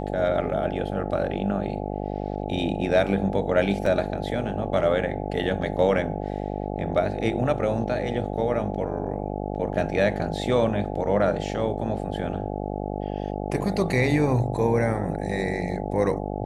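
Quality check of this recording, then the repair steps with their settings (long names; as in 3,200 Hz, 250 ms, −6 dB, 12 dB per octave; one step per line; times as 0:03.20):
mains buzz 50 Hz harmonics 17 −30 dBFS
0:03.86: drop-out 3.5 ms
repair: hum removal 50 Hz, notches 17
repair the gap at 0:03.86, 3.5 ms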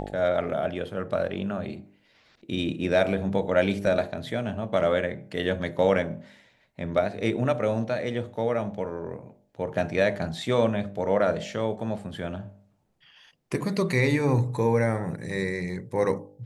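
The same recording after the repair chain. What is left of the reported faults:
none of them is left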